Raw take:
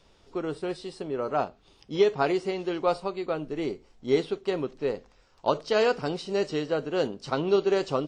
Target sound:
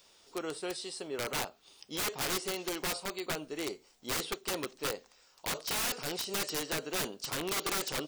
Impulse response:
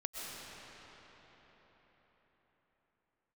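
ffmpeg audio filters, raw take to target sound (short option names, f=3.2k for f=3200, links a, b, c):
-af "aemphasis=mode=production:type=riaa,aeval=exprs='(mod(16.8*val(0)+1,2)-1)/16.8':c=same,volume=-3dB"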